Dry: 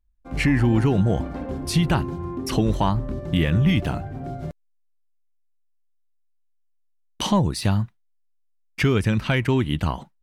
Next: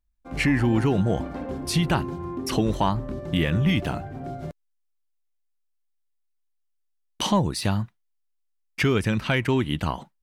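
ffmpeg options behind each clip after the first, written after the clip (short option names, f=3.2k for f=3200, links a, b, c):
-af "lowshelf=f=140:g=-7"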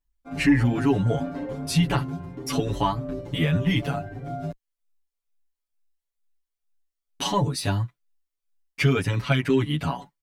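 -filter_complex "[0:a]aecho=1:1:7.1:0.89,asplit=2[a][b];[b]adelay=7.8,afreqshift=2.2[c];[a][c]amix=inputs=2:normalize=1"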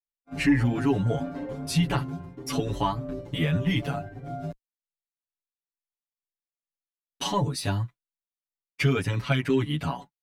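-af "agate=range=-33dB:threshold=-33dB:ratio=3:detection=peak,volume=-2.5dB"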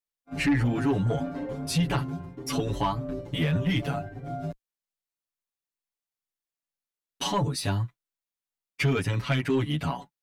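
-af "asoftclip=type=tanh:threshold=-18.5dB,volume=1dB"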